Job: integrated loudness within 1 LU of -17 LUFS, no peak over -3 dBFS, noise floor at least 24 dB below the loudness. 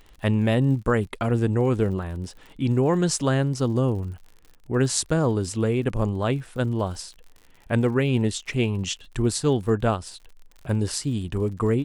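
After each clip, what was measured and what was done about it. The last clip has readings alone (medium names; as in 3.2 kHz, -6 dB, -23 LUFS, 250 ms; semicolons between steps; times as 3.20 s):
tick rate 55 per s; loudness -24.0 LUFS; peak level -6.0 dBFS; loudness target -17.0 LUFS
-> de-click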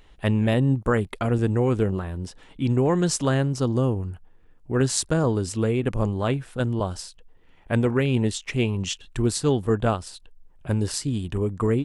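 tick rate 0 per s; loudness -24.5 LUFS; peak level -6.0 dBFS; loudness target -17.0 LUFS
-> trim +7.5 dB; peak limiter -3 dBFS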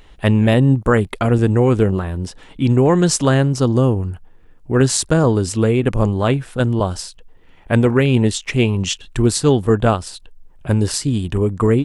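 loudness -17.0 LUFS; peak level -3.0 dBFS; noise floor -46 dBFS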